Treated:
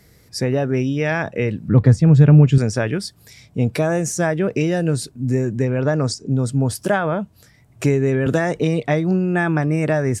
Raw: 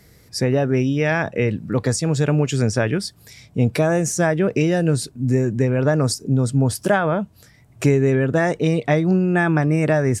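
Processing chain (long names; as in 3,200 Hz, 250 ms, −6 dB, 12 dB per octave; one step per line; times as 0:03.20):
0:01.68–0:02.58: bass and treble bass +13 dB, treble −14 dB
0:05.65–0:06.29: low-pass filter 7,900 Hz 24 dB per octave
0:08.26–0:08.83: multiband upward and downward compressor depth 100%
level −1 dB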